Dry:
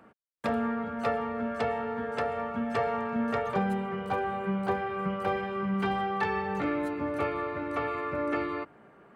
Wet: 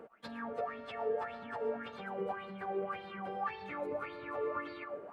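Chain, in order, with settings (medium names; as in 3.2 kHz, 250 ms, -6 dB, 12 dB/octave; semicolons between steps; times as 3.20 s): peaking EQ 71 Hz -6.5 dB 0.29 oct; compression 6:1, threshold -41 dBFS, peak gain reduction 16.5 dB; plain phase-vocoder stretch 0.56×; reverberation RT60 0.95 s, pre-delay 75 ms, DRR 9 dB; sweeping bell 1.8 Hz 430–4400 Hz +18 dB; trim -1 dB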